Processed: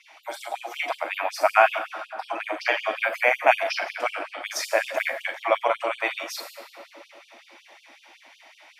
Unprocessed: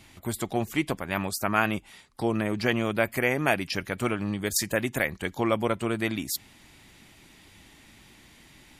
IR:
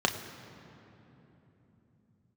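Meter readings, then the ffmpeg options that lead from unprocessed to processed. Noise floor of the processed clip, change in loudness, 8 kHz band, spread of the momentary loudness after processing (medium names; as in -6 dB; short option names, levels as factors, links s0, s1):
-56 dBFS, +3.0 dB, -5.0 dB, 15 LU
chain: -filter_complex "[0:a]lowshelf=f=510:t=q:w=3:g=-8[s0];[1:a]atrim=start_sample=2205,asetrate=35280,aresample=44100[s1];[s0][s1]afir=irnorm=-1:irlink=0,afftfilt=real='re*gte(b*sr/1024,250*pow(2800/250,0.5+0.5*sin(2*PI*5.4*pts/sr)))':imag='im*gte(b*sr/1024,250*pow(2800/250,0.5+0.5*sin(2*PI*5.4*pts/sr)))':win_size=1024:overlap=0.75,volume=0.422"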